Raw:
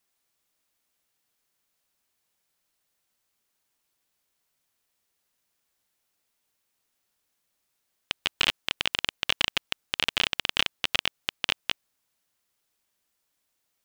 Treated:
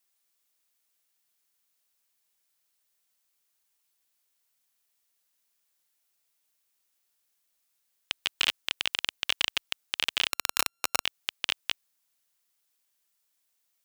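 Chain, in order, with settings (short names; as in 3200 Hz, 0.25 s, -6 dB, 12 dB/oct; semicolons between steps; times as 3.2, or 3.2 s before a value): 10.31–11.04 sample sorter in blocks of 32 samples; tilt +2 dB/oct; gain -5 dB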